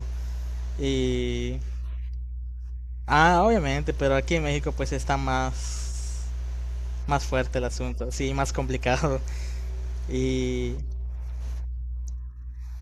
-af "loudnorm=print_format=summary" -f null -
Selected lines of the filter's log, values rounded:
Input Integrated:    -28.0 LUFS
Input True Peak:      -5.5 dBTP
Input LRA:             7.1 LU
Input Threshold:     -38.2 LUFS